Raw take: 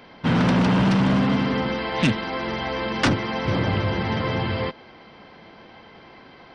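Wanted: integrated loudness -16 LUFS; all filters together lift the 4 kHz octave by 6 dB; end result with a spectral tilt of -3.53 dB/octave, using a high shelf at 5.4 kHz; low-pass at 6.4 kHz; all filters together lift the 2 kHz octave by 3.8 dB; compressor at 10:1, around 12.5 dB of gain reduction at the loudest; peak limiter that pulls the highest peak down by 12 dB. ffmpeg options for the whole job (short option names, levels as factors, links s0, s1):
-af "lowpass=6400,equalizer=f=2000:t=o:g=3,equalizer=f=4000:t=o:g=8.5,highshelf=f=5400:g=-3,acompressor=threshold=0.0501:ratio=10,volume=8.91,alimiter=limit=0.447:level=0:latency=1"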